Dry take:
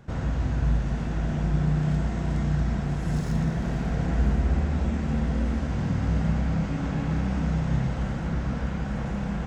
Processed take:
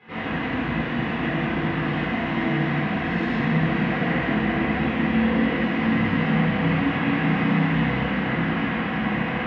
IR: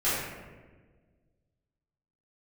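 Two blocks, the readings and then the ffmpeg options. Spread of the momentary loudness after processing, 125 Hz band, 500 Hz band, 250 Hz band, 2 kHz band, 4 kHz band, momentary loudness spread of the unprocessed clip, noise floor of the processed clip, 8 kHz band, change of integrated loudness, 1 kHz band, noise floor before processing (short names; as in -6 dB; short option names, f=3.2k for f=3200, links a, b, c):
4 LU, -1.0 dB, +8.0 dB, +6.5 dB, +15.0 dB, +11.5 dB, 4 LU, -27 dBFS, n/a, +4.0 dB, +10.0 dB, -30 dBFS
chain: -filter_complex "[0:a]areverse,acompressor=mode=upward:threshold=-28dB:ratio=2.5,areverse,highpass=380,equalizer=f=390:t=q:w=4:g=-8,equalizer=f=580:t=q:w=4:g=-9,equalizer=f=850:t=q:w=4:g=-8,equalizer=f=1.4k:t=q:w=4:g=-8,equalizer=f=2k:t=q:w=4:g=6,equalizer=f=2.8k:t=q:w=4:g=5,lowpass=f=3.2k:w=0.5412,lowpass=f=3.2k:w=1.3066[a];[1:a]atrim=start_sample=2205,asetrate=27342,aresample=44100[b];[a][b]afir=irnorm=-1:irlink=0"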